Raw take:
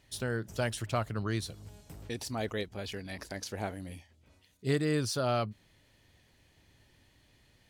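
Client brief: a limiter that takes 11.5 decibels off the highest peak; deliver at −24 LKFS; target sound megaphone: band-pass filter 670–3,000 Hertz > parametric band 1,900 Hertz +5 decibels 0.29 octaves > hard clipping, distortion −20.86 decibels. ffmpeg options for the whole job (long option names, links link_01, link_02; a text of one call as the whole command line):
ffmpeg -i in.wav -af "alimiter=level_in=4dB:limit=-24dB:level=0:latency=1,volume=-4dB,highpass=670,lowpass=3000,equalizer=frequency=1900:width_type=o:width=0.29:gain=5,asoftclip=type=hard:threshold=-33.5dB,volume=21dB" out.wav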